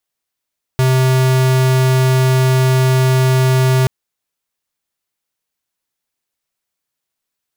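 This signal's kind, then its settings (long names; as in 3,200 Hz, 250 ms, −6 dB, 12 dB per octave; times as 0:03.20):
tone square 130 Hz −12 dBFS 3.08 s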